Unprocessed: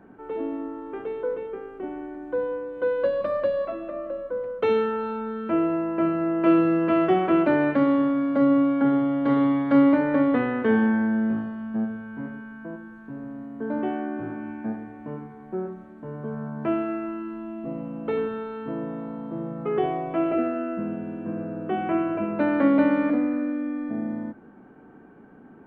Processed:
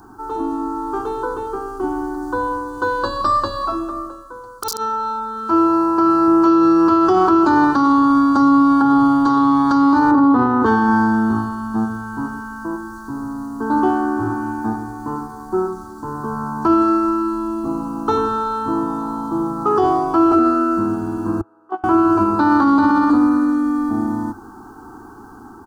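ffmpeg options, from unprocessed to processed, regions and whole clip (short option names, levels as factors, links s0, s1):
-filter_complex "[0:a]asettb=1/sr,asplit=3[s0][s1][s2];[s0]atrim=end=4.094[s3];[s1]atrim=start=4.09:end=6.28,asetpts=PTS-STARTPTS,afade=t=in:d=0.004:c=qsin,afade=t=out:st=2.186:d=0.004:c=qsin,lowshelf=f=350:g=-6,aeval=exprs='(mod(5.96*val(0)+1,2)-1)/5.96':c=same[s4];[s2]atrim=start=6.276[s5];[s3][s4]acrossfade=d=0.004:c1=hsin:c2=qsin[s6];[s6][s5]acrossfade=d=0.004:c1=qsin:c2=hsin,asettb=1/sr,asplit=3[s7][s8][s9];[s7]atrim=end=10.114[s10];[s8]atrim=start=10.11:end=10.66,asetpts=PTS-STARTPTS,afade=t=in:d=0.004:c=qsin,afade=t=out:st=0.546:d=0.004:c=qsin,highpass=f=170:p=1,tiltshelf=f=1400:g=9[s11];[s9]atrim=start=10.656[s12];[s10][s11]acrossfade=d=0.004:c1=hsin:c2=qsin[s13];[s13][s12]acrossfade=d=0.004:c1=qsin:c2=hsin,asettb=1/sr,asplit=3[s14][s15][s16];[s14]atrim=end=21.414[s17];[s15]atrim=start=21.41:end=21.84,asetpts=PTS-STARTPTS,afade=t=in:d=0.004:c=qsin,afade=t=out:st=0.426:d=0.004:c=qsin,agate=range=0.0708:threshold=0.0631:ratio=16:release=100:detection=peak,acrossover=split=370 2400:gain=0.0631 1 0.178[s18][s19][s20];[s18][s19][s20]amix=inputs=3:normalize=0[s21];[s16]atrim=start=21.836[s22];[s17][s21]acrossfade=d=0.004:c1=hsin:c2=qsin[s23];[s23][s22]acrossfade=d=0.004:c1=qsin:c2=hsin,firequalizer=gain_entry='entry(100,0);entry(150,-18);entry(340,-5);entry(570,-26);entry(820,0);entry(1300,1);entry(2100,-29);entry(4700,14)':delay=0.05:min_phase=1,dynaudnorm=f=530:g=3:m=1.58,alimiter=level_in=10.6:limit=0.891:release=50:level=0:latency=1,volume=0.531"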